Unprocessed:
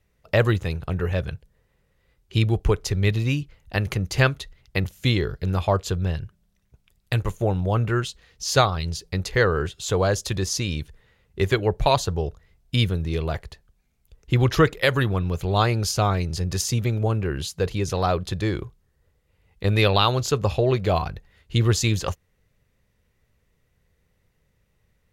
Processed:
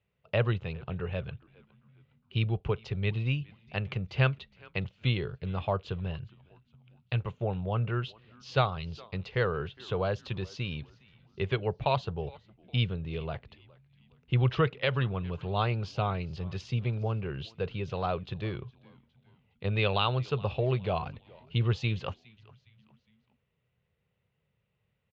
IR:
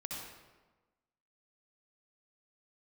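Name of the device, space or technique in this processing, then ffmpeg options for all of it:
frequency-shifting delay pedal into a guitar cabinet: -filter_complex "[0:a]asplit=4[s0][s1][s2][s3];[s1]adelay=411,afreqshift=-110,volume=0.0708[s4];[s2]adelay=822,afreqshift=-220,volume=0.0305[s5];[s3]adelay=1233,afreqshift=-330,volume=0.013[s6];[s0][s4][s5][s6]amix=inputs=4:normalize=0,highpass=93,equalizer=f=130:t=q:w=4:g=5,equalizer=f=300:t=q:w=4:g=-8,equalizer=f=1800:t=q:w=4:g=-5,equalizer=f=2800:t=q:w=4:g=5,lowpass=f=3600:w=0.5412,lowpass=f=3600:w=1.3066,volume=0.398"

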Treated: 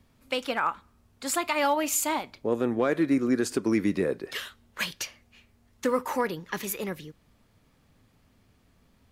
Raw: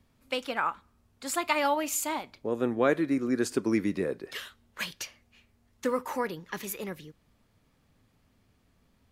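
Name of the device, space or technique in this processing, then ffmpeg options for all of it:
limiter into clipper: -af "alimiter=limit=0.119:level=0:latency=1:release=125,asoftclip=type=hard:threshold=0.106,volume=1.58"

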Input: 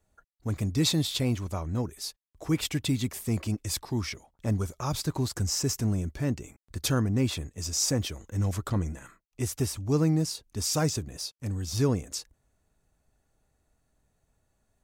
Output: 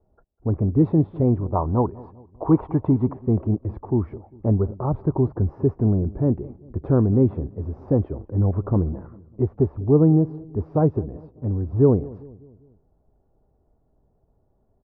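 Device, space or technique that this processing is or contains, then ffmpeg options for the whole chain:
under water: -filter_complex "[0:a]lowpass=f=930:w=0.5412,lowpass=f=930:w=1.3066,equalizer=f=390:t=o:w=0.45:g=5.5,asettb=1/sr,asplit=3[s0][s1][s2];[s0]atrim=end=1.554[s3];[s1]atrim=start=1.55:end=3.14,asetpts=PTS-STARTPTS,afade=t=in:d=0.004:c=qsin,afade=t=out:st=1.586:d=0.004:c=qsin,equalizer=f=980:t=o:w=0.91:g=14[s4];[s2]atrim=start=3.136[s5];[s3][s4]acrossfade=d=0.004:c1=hsin:c2=qsin[s6];[s6][s5]acrossfade=d=0.004:c1=qsin:c2=hsin,asplit=2[s7][s8];[s8]adelay=199,lowpass=f=940:p=1,volume=0.1,asplit=2[s9][s10];[s10]adelay=199,lowpass=f=940:p=1,volume=0.5,asplit=2[s11][s12];[s12]adelay=199,lowpass=f=940:p=1,volume=0.5,asplit=2[s13][s14];[s14]adelay=199,lowpass=f=940:p=1,volume=0.5[s15];[s7][s9][s11][s13][s15]amix=inputs=5:normalize=0,volume=2.37"

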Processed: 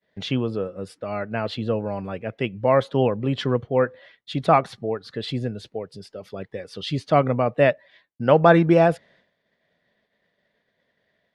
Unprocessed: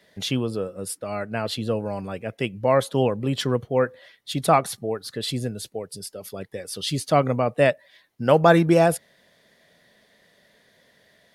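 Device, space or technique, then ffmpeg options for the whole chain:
hearing-loss simulation: -af "lowpass=3200,agate=range=0.0224:threshold=0.00282:ratio=3:detection=peak,volume=1.12"

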